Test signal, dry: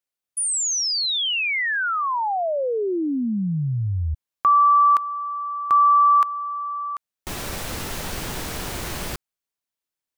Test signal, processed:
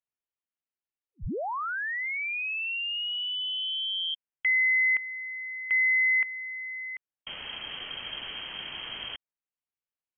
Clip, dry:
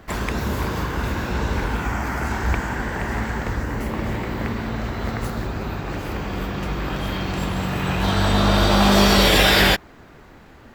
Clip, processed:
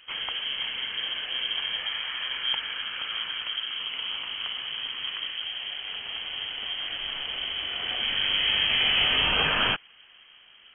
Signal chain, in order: frequency inversion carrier 3.2 kHz; trim -8.5 dB

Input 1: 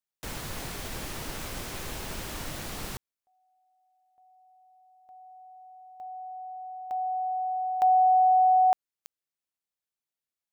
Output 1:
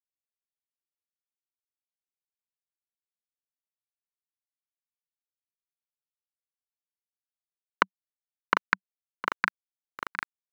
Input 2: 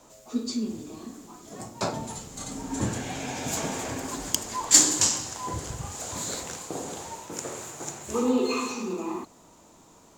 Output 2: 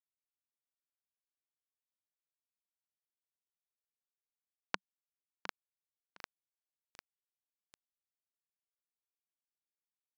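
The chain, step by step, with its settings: hum notches 50/100/150/200/250 Hz; spectral gate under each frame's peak -30 dB weak; three-band isolator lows -13 dB, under 220 Hz, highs -16 dB, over 2.5 kHz; word length cut 6-bit, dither none; cabinet simulation 150–4200 Hz, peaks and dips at 190 Hz +5 dB, 1 kHz +6 dB, 1.5 kHz +7 dB, 3.6 kHz -7 dB; on a send: feedback delay 710 ms, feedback 19%, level -12 dB; on the sum: loudness maximiser +34.5 dB; bit-crushed delay 749 ms, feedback 55%, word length 6-bit, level -5.5 dB; trim -1 dB

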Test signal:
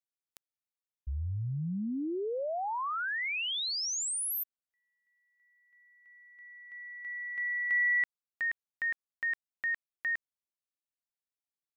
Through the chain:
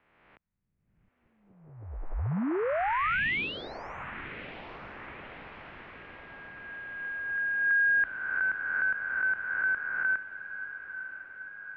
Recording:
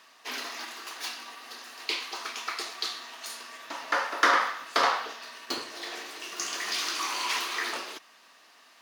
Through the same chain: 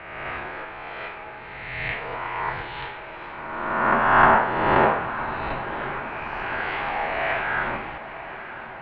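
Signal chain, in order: reverse spectral sustain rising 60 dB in 1.54 s; echo that smears into a reverb 1007 ms, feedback 65%, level -13 dB; mistuned SSB -320 Hz 320–2700 Hz; trim +3.5 dB

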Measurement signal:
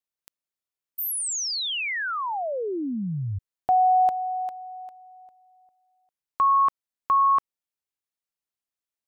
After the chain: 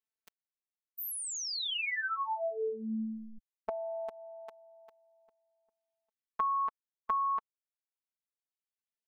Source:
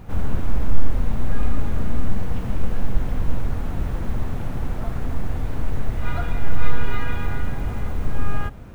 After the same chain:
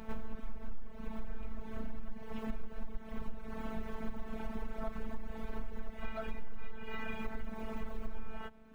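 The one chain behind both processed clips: reverb removal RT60 1.5 s; tone controls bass -5 dB, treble -8 dB; compression 10:1, threshold -29 dBFS; robot voice 221 Hz

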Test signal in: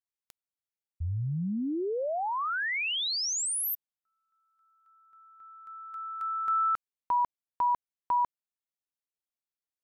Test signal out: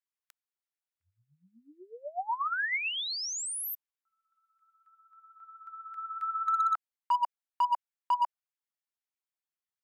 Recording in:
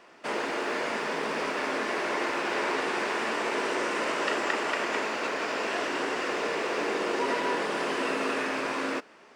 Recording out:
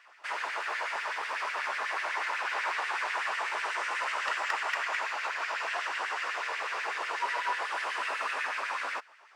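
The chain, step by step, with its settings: LFO high-pass sine 8.1 Hz 790–2000 Hz; overload inside the chain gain 16.5 dB; trim -5 dB

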